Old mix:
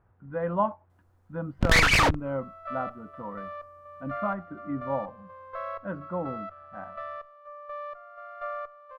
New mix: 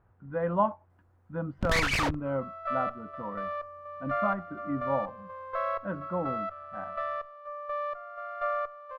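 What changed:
first sound -7.5 dB; second sound +4.5 dB

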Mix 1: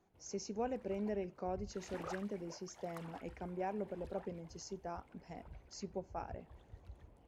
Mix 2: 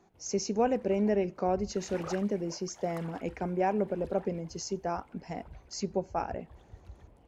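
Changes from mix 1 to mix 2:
speech +11.5 dB; background +4.5 dB

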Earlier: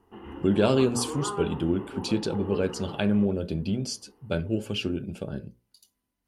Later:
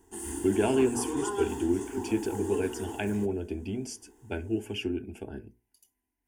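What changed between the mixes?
background: remove rippled Chebyshev low-pass 3000 Hz, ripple 6 dB; master: add fixed phaser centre 820 Hz, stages 8

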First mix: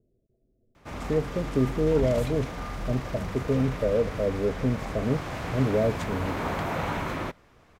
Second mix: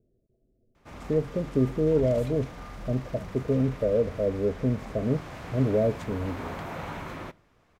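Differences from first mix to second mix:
background -8.5 dB; reverb: on, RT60 0.55 s

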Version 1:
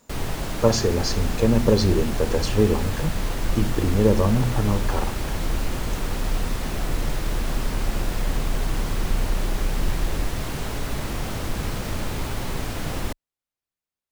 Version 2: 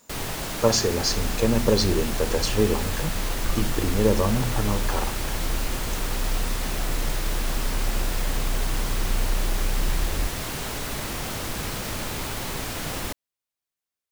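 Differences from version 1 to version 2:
second sound +7.5 dB; master: add tilt +1.5 dB/oct

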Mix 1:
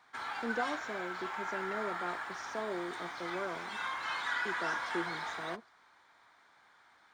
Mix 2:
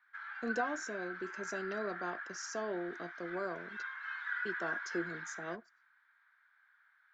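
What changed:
speech: remove LPF 3800 Hz 12 dB/oct; background: add ladder band-pass 1700 Hz, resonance 70%

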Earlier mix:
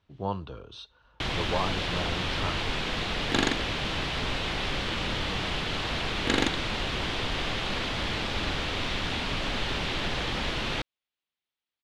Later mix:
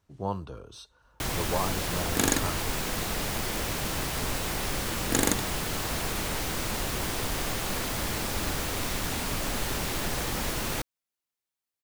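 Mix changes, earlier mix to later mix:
second sound: entry -1.15 s; master: remove synth low-pass 3400 Hz, resonance Q 2.1

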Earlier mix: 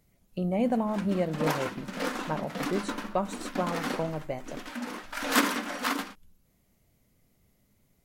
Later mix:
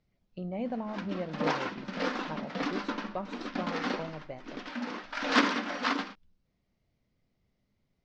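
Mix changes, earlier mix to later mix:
speech -8.0 dB; master: add steep low-pass 5500 Hz 36 dB/oct

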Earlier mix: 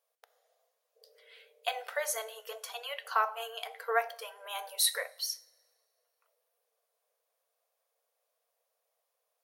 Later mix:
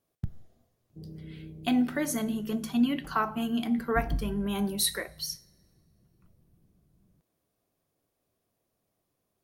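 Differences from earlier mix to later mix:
background: remove Chebyshev low-pass 740 Hz, order 8; master: remove brick-wall FIR high-pass 440 Hz

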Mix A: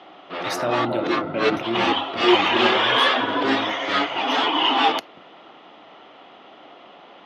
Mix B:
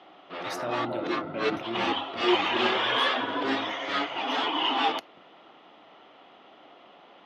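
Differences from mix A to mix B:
speech -9.0 dB; background -7.0 dB

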